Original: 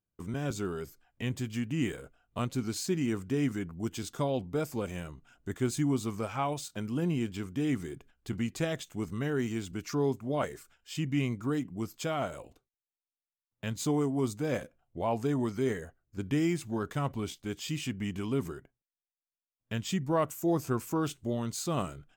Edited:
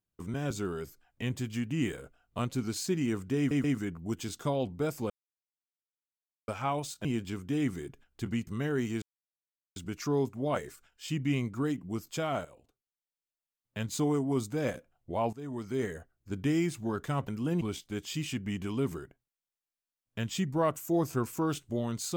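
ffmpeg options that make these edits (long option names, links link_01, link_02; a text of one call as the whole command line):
ffmpeg -i in.wav -filter_complex "[0:a]asplit=12[link_01][link_02][link_03][link_04][link_05][link_06][link_07][link_08][link_09][link_10][link_11][link_12];[link_01]atrim=end=3.512[link_13];[link_02]atrim=start=3.378:end=3.512[link_14];[link_03]atrim=start=3.378:end=4.84,asetpts=PTS-STARTPTS,afade=type=out:start_time=1.458:duration=0.004:curve=hsin[link_15];[link_04]atrim=start=4.84:end=6.22,asetpts=PTS-STARTPTS,volume=0[link_16];[link_05]atrim=start=6.22:end=6.792,asetpts=PTS-STARTPTS,afade=type=in:duration=0.004:curve=hsin[link_17];[link_06]atrim=start=7.118:end=8.542[link_18];[link_07]atrim=start=9.078:end=9.63,asetpts=PTS-STARTPTS,afade=type=out:start_time=0.548:duration=0.004:curve=hsin,apad=pad_dur=0.74[link_19];[link_08]atrim=start=9.63:end=12.32,asetpts=PTS-STARTPTS,afade=type=in:duration=0.004:curve=hsin,afade=type=out:start_time=2.686:duration=0.004:curve=hsin:silence=0.251189[link_20];[link_09]atrim=start=12.32:end=15.2,asetpts=PTS-STARTPTS,afade=type=in:duration=1.34:silence=0.251189,afade=type=out:start_time=2.876:duration=0.004:curve=hsin:silence=0.125893[link_21];[link_10]atrim=start=15.2:end=17.152,asetpts=PTS-STARTPTS,afade=type=in:duration=0.61:silence=0.125893[link_22];[link_11]atrim=start=6.788:end=7.122[link_23];[link_12]atrim=start=17.148[link_24];[link_13][link_14]acrossfade=duration=0.004:curve1=hsin:curve2=hsin[link_25];[link_15][link_16][link_17]concat=n=3:v=0:a=1[link_26];[link_25][link_26]acrossfade=duration=0.004:curve1=hsin:curve2=hsin[link_27];[link_27][link_18]acrossfade=duration=0.004:curve1=hsin:curve2=hsin[link_28];[link_19][link_20][link_21][link_22]concat=n=4:v=0:a=1[link_29];[link_28][link_29]acrossfade=duration=0.004:curve1=hsin:curve2=hsin[link_30];[link_30][link_23]acrossfade=duration=0.004:curve1=hsin:curve2=hsin[link_31];[link_31][link_24]acrossfade=duration=0.004:curve1=hsin:curve2=hsin" out.wav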